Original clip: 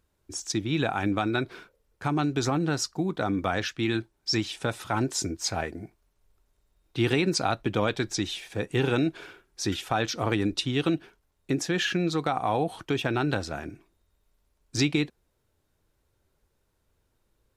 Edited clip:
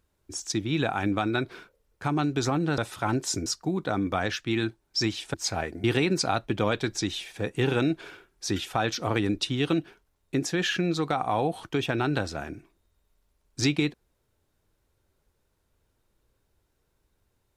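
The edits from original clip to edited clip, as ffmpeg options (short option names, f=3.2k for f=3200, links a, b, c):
-filter_complex "[0:a]asplit=5[a][b][c][d][e];[a]atrim=end=2.782[f];[b]atrim=start=4.658:end=5.342[g];[c]atrim=start=2.778:end=4.662[h];[d]atrim=start=5.338:end=5.842[i];[e]atrim=start=6.998[j];[f][g]acrossfade=d=0.004:c1=hsin:c2=hsin[k];[k][h]acrossfade=d=0.004:c1=hsin:c2=hsin[l];[l][i]acrossfade=d=0.004:c1=hsin:c2=hsin[m];[m][j]acrossfade=d=0.004:c1=hsin:c2=hsin"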